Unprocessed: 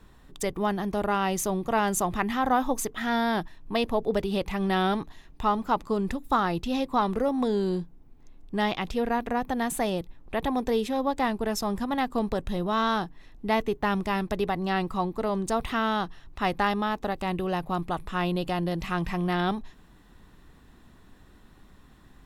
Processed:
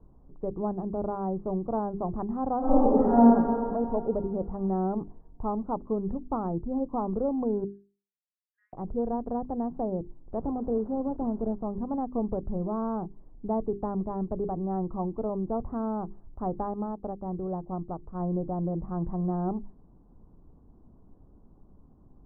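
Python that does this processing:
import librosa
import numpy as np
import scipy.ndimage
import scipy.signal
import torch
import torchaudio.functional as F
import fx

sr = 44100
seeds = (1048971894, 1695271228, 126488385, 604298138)

y = fx.reverb_throw(x, sr, start_s=2.58, length_s=0.71, rt60_s=2.4, drr_db=-12.0)
y = fx.steep_highpass(y, sr, hz=1700.0, slope=72, at=(7.64, 8.73))
y = fx.delta_mod(y, sr, bps=16000, step_db=-38.0, at=(10.39, 11.55))
y = fx.upward_expand(y, sr, threshold_db=-38.0, expansion=1.5, at=(16.66, 18.2))
y = scipy.signal.sosfilt(scipy.signal.bessel(8, 580.0, 'lowpass', norm='mag', fs=sr, output='sos'), y)
y = fx.hum_notches(y, sr, base_hz=50, count=8)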